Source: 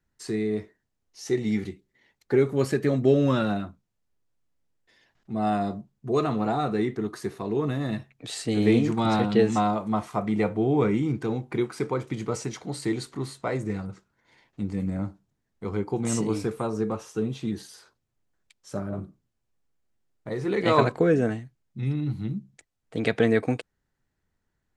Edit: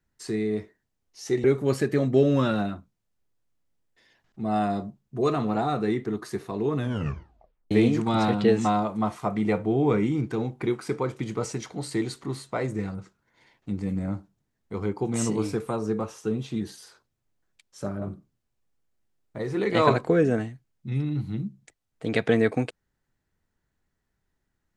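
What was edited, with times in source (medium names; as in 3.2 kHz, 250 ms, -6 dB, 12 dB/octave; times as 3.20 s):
1.44–2.35 s: delete
7.69 s: tape stop 0.93 s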